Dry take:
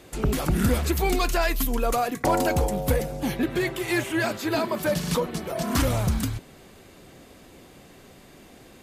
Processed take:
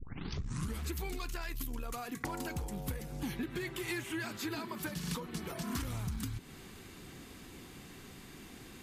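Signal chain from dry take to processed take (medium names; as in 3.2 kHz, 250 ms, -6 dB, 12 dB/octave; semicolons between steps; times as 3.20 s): tape start-up on the opening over 0.79 s; compression 6:1, threshold -34 dBFS, peak gain reduction 15.5 dB; peaking EQ 590 Hz -12.5 dB 0.69 oct; transformer saturation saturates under 130 Hz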